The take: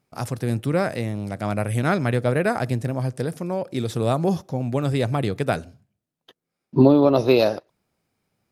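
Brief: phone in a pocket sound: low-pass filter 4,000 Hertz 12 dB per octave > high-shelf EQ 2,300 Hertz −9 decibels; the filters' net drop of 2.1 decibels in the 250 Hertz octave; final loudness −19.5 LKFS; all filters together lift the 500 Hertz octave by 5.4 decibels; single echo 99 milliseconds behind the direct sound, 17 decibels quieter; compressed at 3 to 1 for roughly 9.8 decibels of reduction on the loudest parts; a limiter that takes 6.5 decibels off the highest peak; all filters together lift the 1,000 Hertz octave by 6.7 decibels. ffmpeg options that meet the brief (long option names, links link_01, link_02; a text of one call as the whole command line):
ffmpeg -i in.wav -af "equalizer=frequency=250:width_type=o:gain=-5,equalizer=frequency=500:width_type=o:gain=6,equalizer=frequency=1000:width_type=o:gain=9,acompressor=threshold=-20dB:ratio=3,alimiter=limit=-13dB:level=0:latency=1,lowpass=4000,highshelf=frequency=2300:gain=-9,aecho=1:1:99:0.141,volume=7dB" out.wav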